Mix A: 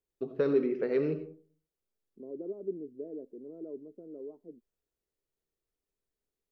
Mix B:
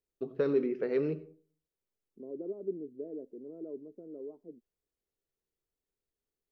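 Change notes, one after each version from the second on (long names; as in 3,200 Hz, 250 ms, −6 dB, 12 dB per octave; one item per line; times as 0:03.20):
first voice: send −7.5 dB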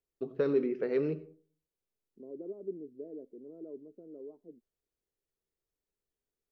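second voice −3.0 dB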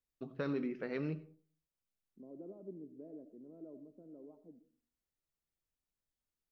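second voice: send on
master: add parametric band 420 Hz −13.5 dB 0.69 octaves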